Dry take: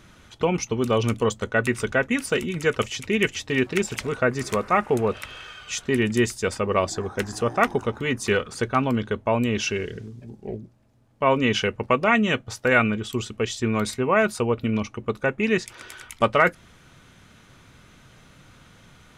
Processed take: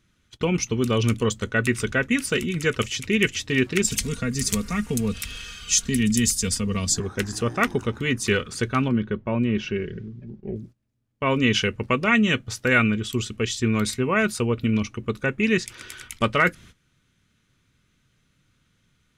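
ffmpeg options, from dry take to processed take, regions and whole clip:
-filter_complex "[0:a]asettb=1/sr,asplit=3[s0][s1][s2];[s0]atrim=end=3.844[s3];[s1]atrim=start=3.84:end=7,asetpts=PTS-STARTPTS,afade=t=in:d=0.004:c=qsin,afade=t=out:st=3.156:d=0.004:c=qsin,bass=f=250:g=7,treble=f=4000:g=8,acrossover=split=180|3000[s4][s5][s6];[s5]acompressor=threshold=0.00398:ratio=1.5:attack=3.2:release=140:knee=2.83:detection=peak[s7];[s4][s7][s6]amix=inputs=3:normalize=0,aecho=1:1:4.3:0.61,atrim=end_sample=139356[s8];[s2]atrim=start=6.996[s9];[s3][s8]acrossfade=d=0.004:c1=hsin:c2=qsin[s10];[s10][s9]acrossfade=d=0.004:c1=qsin:c2=hsin,asettb=1/sr,asplit=3[s11][s12][s13];[s11]atrim=end=8.884[s14];[s12]atrim=start=8.88:end=10.56,asetpts=PTS-STARTPTS,afade=t=in:d=0.004:c=qsin,afade=t=out:st=1.676:d=0.004:c=qsin,lowpass=2300,equalizer=f=1800:w=0.39:g=-3.5,aecho=1:1:5.4:0.35,atrim=end_sample=74088[s15];[s13]atrim=start=10.556[s16];[s14][s15]acrossfade=d=0.004:c1=hsin:c2=qsin[s17];[s17][s16]acrossfade=d=0.004:c1=qsin:c2=hsin,agate=range=0.141:threshold=0.00562:ratio=16:detection=peak,equalizer=f=750:t=o:w=1.4:g=-11.5,volume=1.5"

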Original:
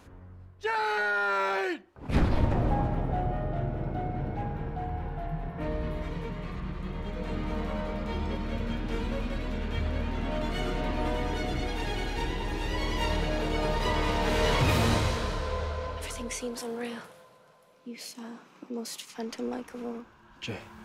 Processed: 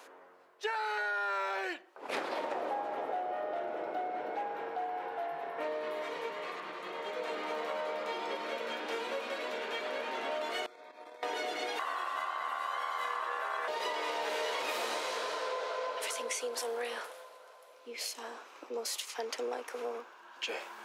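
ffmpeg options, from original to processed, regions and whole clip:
-filter_complex "[0:a]asettb=1/sr,asplit=3[s0][s1][s2];[s0]atrim=end=10.664[s3];[s1]atrim=start=10.66:end=11.23,asetpts=PTS-STARTPTS,afade=t=in:d=0.004:c=qsin,afade=t=out:st=0.566:d=0.004:c=qsin,agate=range=0.0891:threshold=0.0447:ratio=16:release=100:detection=peak,acompressor=threshold=0.00501:ratio=4:attack=3.2:release=140:knee=1:detection=peak,asuperstop=centerf=2900:order=20:qfactor=7.2[s4];[s2]atrim=start=11.226[s5];[s3][s4]acrossfade=d=0.004:c1=hsin:c2=qsin[s6];[s6][s5]acrossfade=d=0.004:c1=qsin:c2=hsin,asettb=1/sr,asplit=3[s7][s8][s9];[s7]atrim=end=11.794[s10];[s8]atrim=start=11.79:end=13.68,asetpts=PTS-STARTPTS,afade=t=in:d=0.004:c=qsin,afade=t=out:st=1.886:d=0.004:c=qsin,equalizer=f=4000:w=1.4:g=-12.5,aeval=exprs='val(0)*sin(2*PI*1100*n/s)':c=same[s11];[s9]atrim=start=13.676[s12];[s10][s11]acrossfade=d=0.004:c1=hsin:c2=qsin[s13];[s13][s12]acrossfade=d=0.004:c1=qsin:c2=hsin,highpass=f=430:w=0.5412,highpass=f=430:w=1.3066,acompressor=threshold=0.0141:ratio=6,volume=1.68"

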